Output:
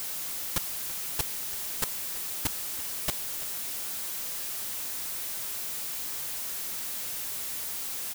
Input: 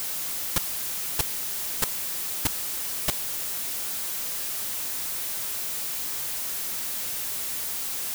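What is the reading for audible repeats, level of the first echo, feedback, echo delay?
1, −17.5 dB, repeats not evenly spaced, 335 ms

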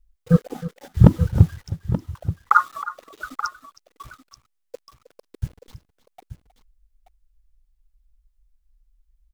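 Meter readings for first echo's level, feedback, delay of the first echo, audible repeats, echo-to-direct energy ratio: −15.5 dB, repeats not evenly spaced, 315 ms, 2, −10.5 dB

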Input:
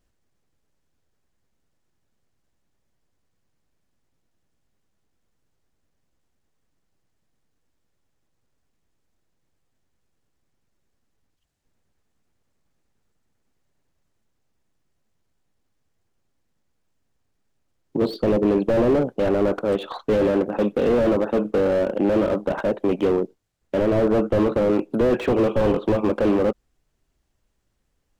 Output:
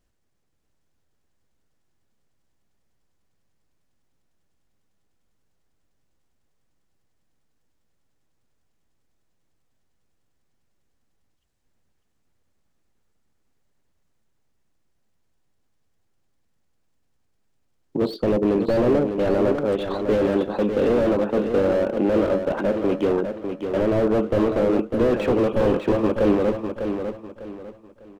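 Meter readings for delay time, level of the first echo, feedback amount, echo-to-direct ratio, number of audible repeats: 600 ms, −7.0 dB, 31%, −6.5 dB, 3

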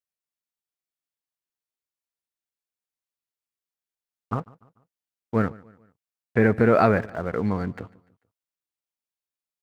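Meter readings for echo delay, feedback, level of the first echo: 147 ms, 45%, −23.0 dB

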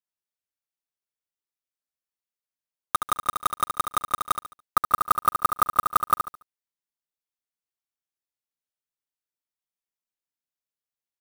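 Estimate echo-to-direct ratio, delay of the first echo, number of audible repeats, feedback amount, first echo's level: −7.0 dB, 71 ms, 3, 32%, −7.5 dB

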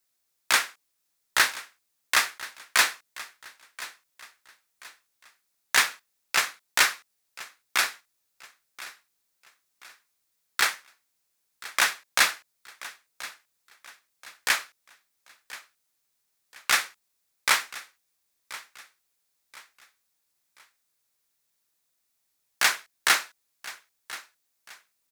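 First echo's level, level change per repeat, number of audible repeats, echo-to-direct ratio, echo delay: −17.5 dB, −8.5 dB, 3, −17.0 dB, 1,030 ms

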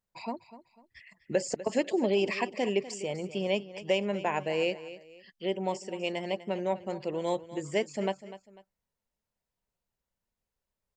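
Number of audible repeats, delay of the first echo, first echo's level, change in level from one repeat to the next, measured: 2, 248 ms, −15.0 dB, −9.5 dB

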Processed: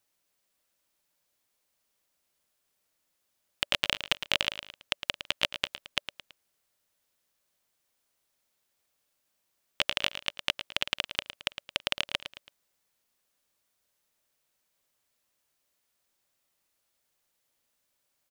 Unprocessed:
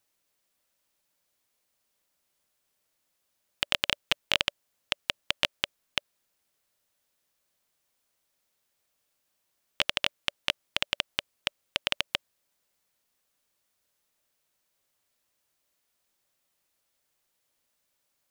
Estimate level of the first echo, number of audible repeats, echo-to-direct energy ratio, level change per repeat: −11.0 dB, 3, −10.0 dB, −7.5 dB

